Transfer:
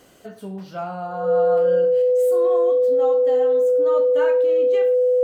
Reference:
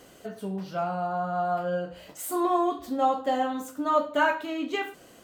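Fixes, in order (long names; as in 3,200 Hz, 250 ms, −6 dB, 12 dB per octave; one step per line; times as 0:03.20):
notch filter 500 Hz, Q 30
level 0 dB, from 0:02.02 +6.5 dB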